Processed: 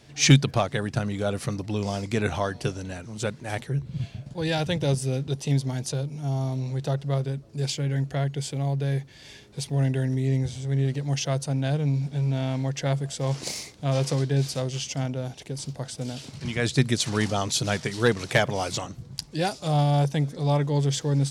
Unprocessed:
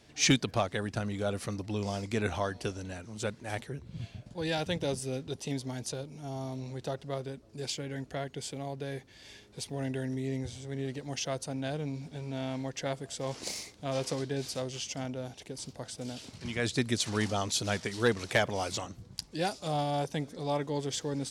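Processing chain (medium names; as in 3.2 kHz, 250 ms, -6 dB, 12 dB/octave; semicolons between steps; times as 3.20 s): peaking EQ 140 Hz +12.5 dB 0.25 oct; trim +5 dB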